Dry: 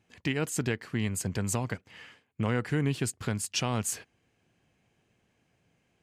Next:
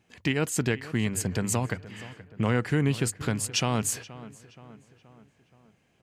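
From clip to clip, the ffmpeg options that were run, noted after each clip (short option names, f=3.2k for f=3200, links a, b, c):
-filter_complex "[0:a]bandreject=f=50:t=h:w=6,bandreject=f=100:t=h:w=6,asplit=2[a][b];[b]adelay=475,lowpass=f=3k:p=1,volume=-17dB,asplit=2[c][d];[d]adelay=475,lowpass=f=3k:p=1,volume=0.54,asplit=2[e][f];[f]adelay=475,lowpass=f=3k:p=1,volume=0.54,asplit=2[g][h];[h]adelay=475,lowpass=f=3k:p=1,volume=0.54,asplit=2[i][j];[j]adelay=475,lowpass=f=3k:p=1,volume=0.54[k];[a][c][e][g][i][k]amix=inputs=6:normalize=0,volume=3.5dB"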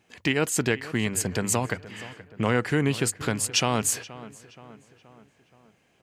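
-af "bass=f=250:g=-6,treble=f=4k:g=0,volume=4dB"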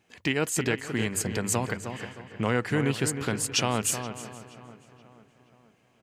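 -filter_complex "[0:a]asplit=2[a][b];[b]adelay=311,lowpass=f=2.9k:p=1,volume=-8dB,asplit=2[c][d];[d]adelay=311,lowpass=f=2.9k:p=1,volume=0.32,asplit=2[e][f];[f]adelay=311,lowpass=f=2.9k:p=1,volume=0.32,asplit=2[g][h];[h]adelay=311,lowpass=f=2.9k:p=1,volume=0.32[i];[a][c][e][g][i]amix=inputs=5:normalize=0,volume=-2.5dB"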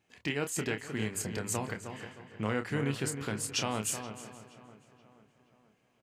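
-filter_complex "[0:a]asplit=2[a][b];[b]adelay=28,volume=-8dB[c];[a][c]amix=inputs=2:normalize=0,volume=-7dB"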